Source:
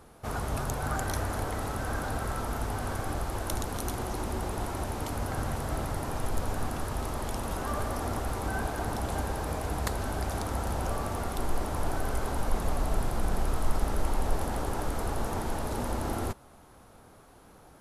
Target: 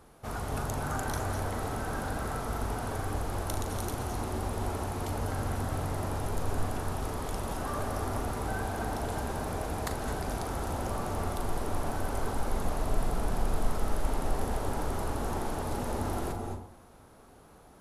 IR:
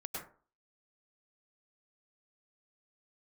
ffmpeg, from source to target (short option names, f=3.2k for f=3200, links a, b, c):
-filter_complex "[0:a]asplit=2[a][b];[1:a]atrim=start_sample=2205,asetrate=25578,aresample=44100,adelay=40[c];[b][c]afir=irnorm=-1:irlink=0,volume=-6.5dB[d];[a][d]amix=inputs=2:normalize=0,volume=-3dB"